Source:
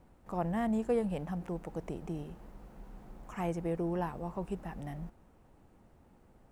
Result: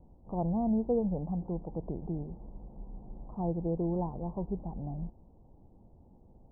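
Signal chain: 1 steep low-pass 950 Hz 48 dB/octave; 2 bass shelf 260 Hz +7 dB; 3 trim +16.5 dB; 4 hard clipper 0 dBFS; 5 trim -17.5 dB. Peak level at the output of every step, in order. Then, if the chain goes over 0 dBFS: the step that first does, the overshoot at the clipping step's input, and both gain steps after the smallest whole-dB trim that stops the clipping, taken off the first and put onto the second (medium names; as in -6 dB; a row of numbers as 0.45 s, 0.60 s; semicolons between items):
-21.5 dBFS, -18.5 dBFS, -2.0 dBFS, -2.0 dBFS, -19.5 dBFS; nothing clips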